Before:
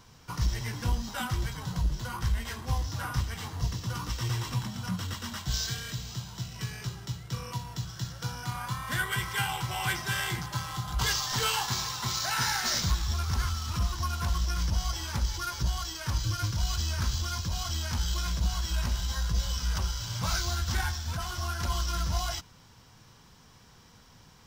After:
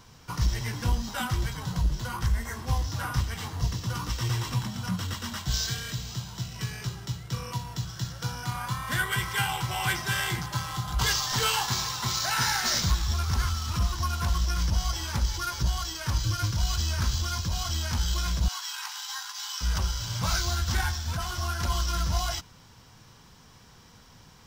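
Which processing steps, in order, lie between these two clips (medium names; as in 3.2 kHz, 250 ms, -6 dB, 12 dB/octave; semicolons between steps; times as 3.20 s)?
2.29–2.61 s: spectral replace 2.2–5.6 kHz after; 18.48–19.61 s: brick-wall FIR high-pass 740 Hz; trim +2.5 dB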